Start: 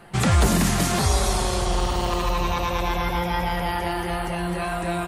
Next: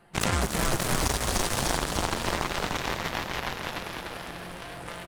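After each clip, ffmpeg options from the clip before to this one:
ffmpeg -i in.wav -filter_complex "[0:a]aeval=exprs='0.316*(cos(1*acos(clip(val(0)/0.316,-1,1)))-cos(1*PI/2))+0.126*(cos(3*acos(clip(val(0)/0.316,-1,1)))-cos(3*PI/2))+0.00447*(cos(5*acos(clip(val(0)/0.316,-1,1)))-cos(5*PI/2))':channel_layout=same,asplit=8[link_01][link_02][link_03][link_04][link_05][link_06][link_07][link_08];[link_02]adelay=297,afreqshift=-48,volume=-3.5dB[link_09];[link_03]adelay=594,afreqshift=-96,volume=-9.2dB[link_10];[link_04]adelay=891,afreqshift=-144,volume=-14.9dB[link_11];[link_05]adelay=1188,afreqshift=-192,volume=-20.5dB[link_12];[link_06]adelay=1485,afreqshift=-240,volume=-26.2dB[link_13];[link_07]adelay=1782,afreqshift=-288,volume=-31.9dB[link_14];[link_08]adelay=2079,afreqshift=-336,volume=-37.6dB[link_15];[link_01][link_09][link_10][link_11][link_12][link_13][link_14][link_15]amix=inputs=8:normalize=0,acompressor=threshold=-28dB:ratio=12,volume=7dB" out.wav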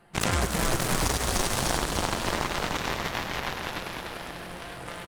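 ffmpeg -i in.wav -af "aecho=1:1:101:0.355" out.wav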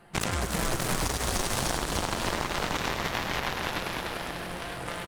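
ffmpeg -i in.wav -af "acompressor=threshold=-27dB:ratio=6,volume=3dB" out.wav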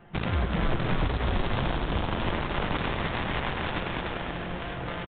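ffmpeg -i in.wav -af "lowshelf=frequency=300:gain=6.5,aresample=8000,asoftclip=type=hard:threshold=-19dB,aresample=44100" out.wav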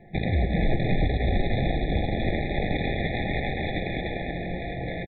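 ffmpeg -i in.wav -af "afftfilt=real='re*eq(mod(floor(b*sr/1024/840),2),0)':imag='im*eq(mod(floor(b*sr/1024/840),2),0)':win_size=1024:overlap=0.75,volume=3.5dB" out.wav

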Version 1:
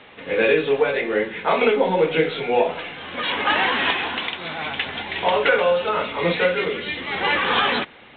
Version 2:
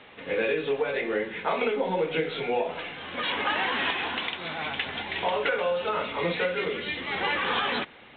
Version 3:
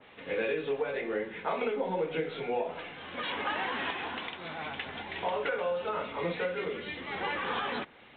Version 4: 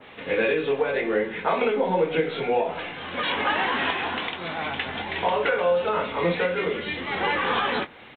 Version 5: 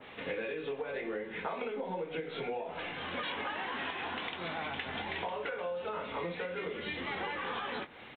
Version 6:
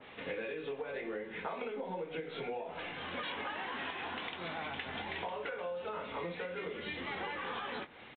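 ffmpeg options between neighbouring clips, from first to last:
ffmpeg -i in.wav -af "acompressor=threshold=-20dB:ratio=3,volume=-4dB" out.wav
ffmpeg -i in.wav -af "adynamicequalizer=threshold=0.01:dfrequency=1900:dqfactor=0.7:tfrequency=1900:tqfactor=0.7:attack=5:release=100:ratio=0.375:range=3:mode=cutabove:tftype=highshelf,volume=-4.5dB" out.wav
ffmpeg -i in.wav -filter_complex "[0:a]asplit=2[link_01][link_02];[link_02]adelay=23,volume=-10.5dB[link_03];[link_01][link_03]amix=inputs=2:normalize=0,volume=8.5dB" out.wav
ffmpeg -i in.wav -af "acompressor=threshold=-30dB:ratio=10,volume=-4dB" out.wav
ffmpeg -i in.wav -af "aresample=11025,aresample=44100,volume=-2.5dB" out.wav

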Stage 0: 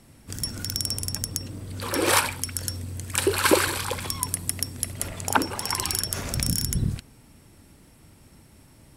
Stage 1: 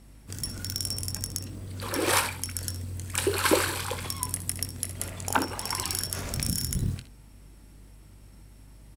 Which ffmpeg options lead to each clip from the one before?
ffmpeg -i in.wav -af "acrusher=bits=7:mode=log:mix=0:aa=0.000001,aeval=exprs='val(0)+0.00398*(sin(2*PI*50*n/s)+sin(2*PI*2*50*n/s)/2+sin(2*PI*3*50*n/s)/3+sin(2*PI*4*50*n/s)/4+sin(2*PI*5*50*n/s)/5)':channel_layout=same,aecho=1:1:22|63|78:0.282|0.188|0.133,volume=-4dB" out.wav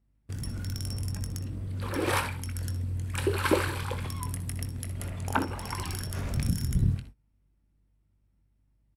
ffmpeg -i in.wav -af "equalizer=frequency=11000:width=3.1:gain=4,agate=range=-23dB:threshold=-44dB:ratio=16:detection=peak,bass=frequency=250:gain=7,treble=frequency=4000:gain=-10,volume=-2.5dB" out.wav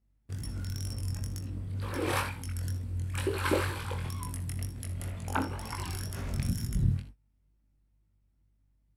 ffmpeg -i in.wav -af "flanger=delay=18:depth=5.5:speed=2.1" out.wav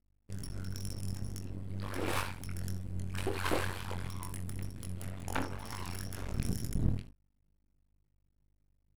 ffmpeg -i in.wav -af "aeval=exprs='max(val(0),0)':channel_layout=same" out.wav

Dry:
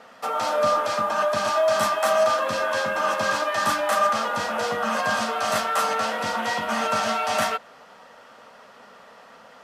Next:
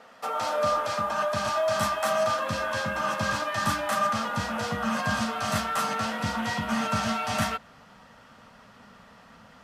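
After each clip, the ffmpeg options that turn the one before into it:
ffmpeg -i in.wav -af "asubboost=boost=8.5:cutoff=160,volume=-3.5dB" out.wav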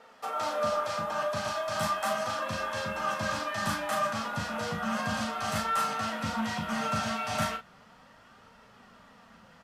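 ffmpeg -i in.wav -filter_complex "[0:a]flanger=delay=2.2:depth=4.9:regen=65:speed=0.35:shape=sinusoidal,asplit=2[link_01][link_02];[link_02]adelay=37,volume=-6.5dB[link_03];[link_01][link_03]amix=inputs=2:normalize=0" out.wav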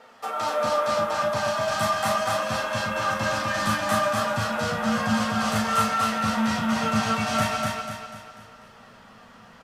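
ffmpeg -i in.wav -af "flanger=delay=7.8:depth=1.7:regen=56:speed=1.5:shape=triangular,aecho=1:1:246|492|738|984|1230|1476:0.708|0.311|0.137|0.0603|0.0265|0.0117,volume=8.5dB" out.wav

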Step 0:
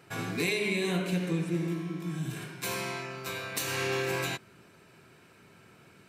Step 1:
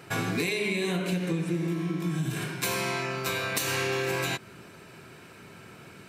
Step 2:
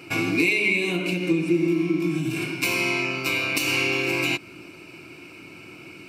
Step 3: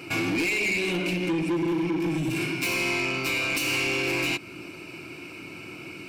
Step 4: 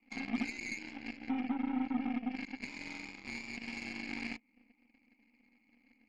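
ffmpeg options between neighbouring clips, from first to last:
ffmpeg -i in.wav -af "acompressor=threshold=-34dB:ratio=6,volume=8.5dB" out.wav
ffmpeg -i in.wav -af "superequalizer=6b=3.55:11b=0.562:12b=3.55:14b=1.78" out.wav
ffmpeg -i in.wav -filter_complex "[0:a]asplit=2[link_01][link_02];[link_02]alimiter=limit=-18dB:level=0:latency=1:release=332,volume=-2.5dB[link_03];[link_01][link_03]amix=inputs=2:normalize=0,asoftclip=type=tanh:threshold=-20dB,volume=-2dB" out.wav
ffmpeg -i in.wav -filter_complex "[0:a]asplit=3[link_01][link_02][link_03];[link_01]bandpass=frequency=300:width_type=q:width=8,volume=0dB[link_04];[link_02]bandpass=frequency=870:width_type=q:width=8,volume=-6dB[link_05];[link_03]bandpass=frequency=2240:width_type=q:width=8,volume=-9dB[link_06];[link_04][link_05][link_06]amix=inputs=3:normalize=0,highpass=frequency=300:width_type=q:width=0.5412,highpass=frequency=300:width_type=q:width=1.307,lowpass=frequency=3000:width_type=q:width=0.5176,lowpass=frequency=3000:width_type=q:width=0.7071,lowpass=frequency=3000:width_type=q:width=1.932,afreqshift=-65,aeval=exprs='0.0708*(cos(1*acos(clip(val(0)/0.0708,-1,1)))-cos(1*PI/2))+0.00316*(cos(3*acos(clip(val(0)/0.0708,-1,1)))-cos(3*PI/2))+0.00178*(cos(6*acos(clip(val(0)/0.0708,-1,1)))-cos(6*PI/2))+0.00794*(cos(7*acos(clip(val(0)/0.0708,-1,1)))-cos(7*PI/2))':channel_layout=same" out.wav

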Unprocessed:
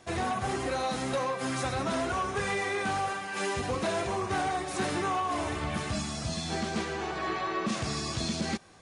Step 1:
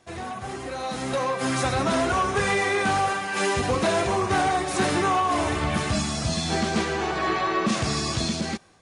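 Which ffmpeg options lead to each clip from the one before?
ffmpeg -i in.wav -af "dynaudnorm=framelen=740:gausssize=3:maxgain=11.5dB,volume=-4dB" out.wav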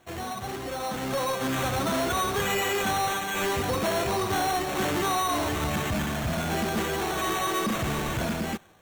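ffmpeg -i in.wav -af "acrusher=samples=9:mix=1:aa=0.000001,asoftclip=type=tanh:threshold=-22dB" out.wav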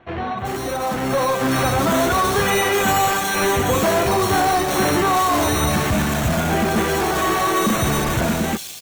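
ffmpeg -i in.wav -filter_complex "[0:a]acrossover=split=3200[link_01][link_02];[link_02]adelay=380[link_03];[link_01][link_03]amix=inputs=2:normalize=0,volume=9dB" out.wav

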